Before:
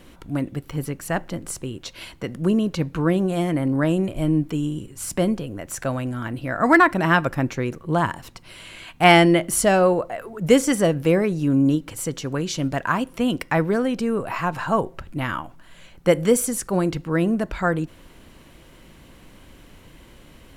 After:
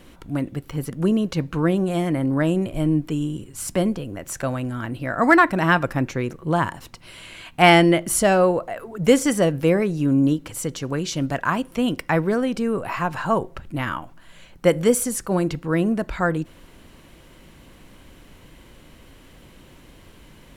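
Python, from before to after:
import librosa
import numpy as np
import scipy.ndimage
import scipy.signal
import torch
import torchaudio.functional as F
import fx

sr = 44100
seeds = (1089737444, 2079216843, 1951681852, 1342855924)

y = fx.edit(x, sr, fx.cut(start_s=0.9, length_s=1.42), tone=tone)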